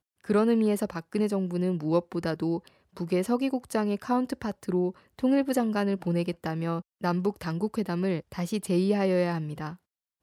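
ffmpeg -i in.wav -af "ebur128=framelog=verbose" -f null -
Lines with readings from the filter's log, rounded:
Integrated loudness:
  I:         -28.2 LUFS
  Threshold: -38.4 LUFS
Loudness range:
  LRA:         1.5 LU
  Threshold: -48.7 LUFS
  LRA low:   -29.5 LUFS
  LRA high:  -28.0 LUFS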